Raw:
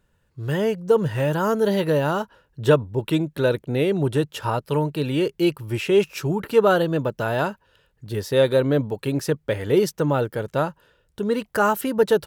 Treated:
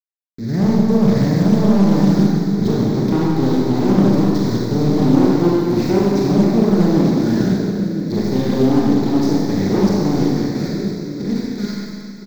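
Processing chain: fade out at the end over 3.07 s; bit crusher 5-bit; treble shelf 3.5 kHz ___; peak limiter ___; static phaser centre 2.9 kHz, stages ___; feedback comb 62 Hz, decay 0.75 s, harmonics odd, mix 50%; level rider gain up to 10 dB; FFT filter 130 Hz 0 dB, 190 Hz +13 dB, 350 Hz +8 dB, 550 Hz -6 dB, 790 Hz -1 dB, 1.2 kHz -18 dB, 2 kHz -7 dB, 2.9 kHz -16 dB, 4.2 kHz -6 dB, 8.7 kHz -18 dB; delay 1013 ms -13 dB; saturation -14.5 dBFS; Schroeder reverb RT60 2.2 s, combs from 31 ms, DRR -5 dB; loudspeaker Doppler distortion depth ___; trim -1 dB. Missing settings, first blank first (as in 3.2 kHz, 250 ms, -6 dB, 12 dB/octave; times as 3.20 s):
+10 dB, -11.5 dBFS, 6, 0.26 ms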